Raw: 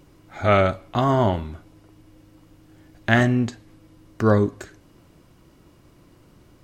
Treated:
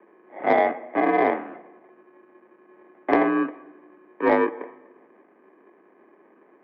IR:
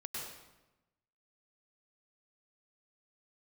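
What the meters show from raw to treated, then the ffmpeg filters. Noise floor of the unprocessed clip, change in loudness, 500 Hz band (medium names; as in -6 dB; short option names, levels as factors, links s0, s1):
-54 dBFS, -1.5 dB, -0.5 dB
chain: -filter_complex "[0:a]acrusher=samples=33:mix=1:aa=0.000001,asplit=2[s0][s1];[1:a]atrim=start_sample=2205,asetrate=39690,aresample=44100[s2];[s1][s2]afir=irnorm=-1:irlink=0,volume=0.119[s3];[s0][s3]amix=inputs=2:normalize=0,highpass=f=230:t=q:w=0.5412,highpass=f=230:t=q:w=1.307,lowpass=f=2100:t=q:w=0.5176,lowpass=f=2100:t=q:w=0.7071,lowpass=f=2100:t=q:w=1.932,afreqshift=51,acontrast=61,volume=0.531"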